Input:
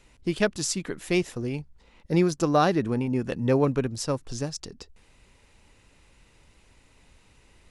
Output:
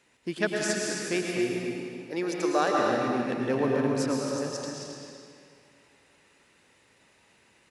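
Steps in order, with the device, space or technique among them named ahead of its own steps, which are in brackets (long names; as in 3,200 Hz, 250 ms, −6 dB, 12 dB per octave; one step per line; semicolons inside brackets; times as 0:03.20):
0:01.52–0:02.79: high-pass filter 340 Hz 12 dB per octave
stadium PA (high-pass filter 190 Hz 12 dB per octave; parametric band 1,700 Hz +6 dB 0.33 octaves; loudspeakers that aren't time-aligned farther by 75 metres −11 dB, 92 metres −9 dB; convolution reverb RT60 2.3 s, pre-delay 100 ms, DRR −1 dB)
level −5 dB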